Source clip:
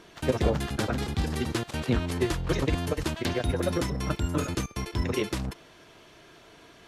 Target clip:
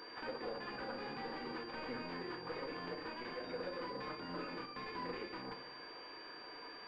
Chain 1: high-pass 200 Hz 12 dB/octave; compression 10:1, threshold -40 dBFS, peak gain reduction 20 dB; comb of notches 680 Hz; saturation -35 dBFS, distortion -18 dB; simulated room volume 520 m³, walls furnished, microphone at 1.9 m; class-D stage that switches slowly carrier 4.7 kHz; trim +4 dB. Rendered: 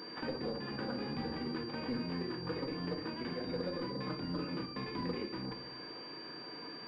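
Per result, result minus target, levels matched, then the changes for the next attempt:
saturation: distortion -9 dB; 250 Hz band +4.5 dB
change: saturation -44.5 dBFS, distortion -9 dB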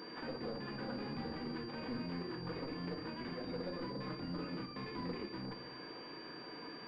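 250 Hz band +4.5 dB
change: high-pass 520 Hz 12 dB/octave

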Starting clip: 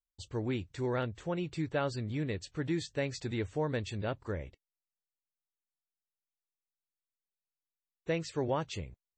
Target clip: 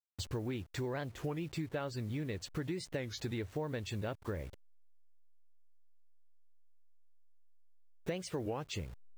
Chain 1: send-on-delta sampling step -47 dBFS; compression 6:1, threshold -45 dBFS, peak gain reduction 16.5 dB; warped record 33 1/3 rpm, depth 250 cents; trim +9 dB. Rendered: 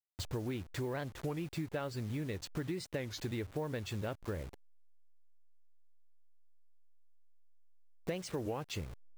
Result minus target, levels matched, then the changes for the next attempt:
send-on-delta sampling: distortion +6 dB
change: send-on-delta sampling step -54 dBFS

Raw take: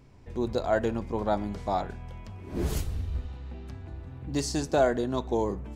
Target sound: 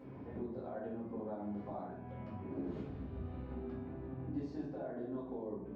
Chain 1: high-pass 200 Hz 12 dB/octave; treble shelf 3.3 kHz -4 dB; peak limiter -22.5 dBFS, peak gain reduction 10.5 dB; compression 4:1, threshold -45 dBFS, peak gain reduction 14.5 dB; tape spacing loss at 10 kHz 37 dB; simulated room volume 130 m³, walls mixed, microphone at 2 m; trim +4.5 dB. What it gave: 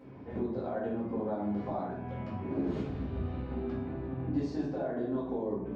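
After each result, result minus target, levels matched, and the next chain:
compression: peak gain reduction -8.5 dB; 4 kHz band +3.5 dB
high-pass 200 Hz 12 dB/octave; treble shelf 3.3 kHz -4 dB; peak limiter -22.5 dBFS, peak gain reduction 10.5 dB; compression 4:1, threshold -56.5 dBFS, peak gain reduction 23.5 dB; tape spacing loss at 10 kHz 37 dB; simulated room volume 130 m³, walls mixed, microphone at 2 m; trim +4.5 dB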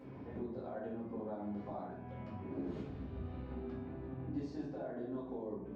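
4 kHz band +3.5 dB
high-pass 200 Hz 12 dB/octave; treble shelf 3.3 kHz -11 dB; peak limiter -22.5 dBFS, peak gain reduction 10 dB; compression 4:1, threshold -56.5 dBFS, peak gain reduction 23.5 dB; tape spacing loss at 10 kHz 37 dB; simulated room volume 130 m³, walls mixed, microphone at 2 m; trim +4.5 dB

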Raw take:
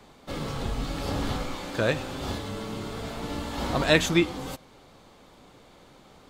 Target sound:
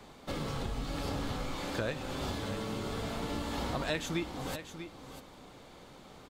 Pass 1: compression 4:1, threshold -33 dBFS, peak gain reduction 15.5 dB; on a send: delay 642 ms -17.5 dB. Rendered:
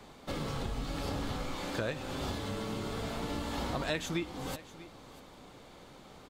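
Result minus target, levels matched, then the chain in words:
echo-to-direct -7 dB
compression 4:1, threshold -33 dBFS, peak gain reduction 15.5 dB; on a send: delay 642 ms -10.5 dB

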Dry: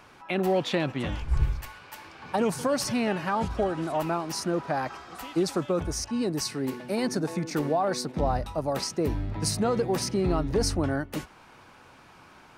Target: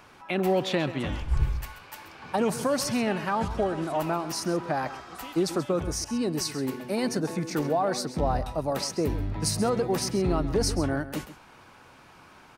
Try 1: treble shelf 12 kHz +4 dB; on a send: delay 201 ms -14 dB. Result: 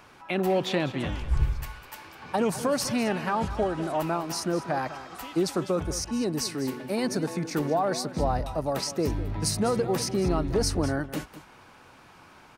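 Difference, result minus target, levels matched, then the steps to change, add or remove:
echo 68 ms late
change: delay 133 ms -14 dB

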